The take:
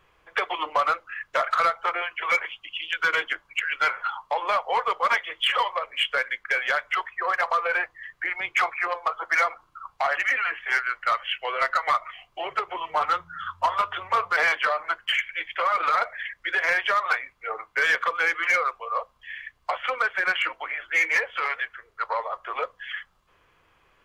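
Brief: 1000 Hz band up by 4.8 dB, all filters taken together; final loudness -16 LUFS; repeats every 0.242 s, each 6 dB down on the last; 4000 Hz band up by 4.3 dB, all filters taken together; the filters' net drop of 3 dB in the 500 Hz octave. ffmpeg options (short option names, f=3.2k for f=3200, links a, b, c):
-af "equalizer=f=500:t=o:g=-6.5,equalizer=f=1k:t=o:g=7,equalizer=f=4k:t=o:g=6,aecho=1:1:242|484|726|968|1210|1452:0.501|0.251|0.125|0.0626|0.0313|0.0157,volume=4.5dB"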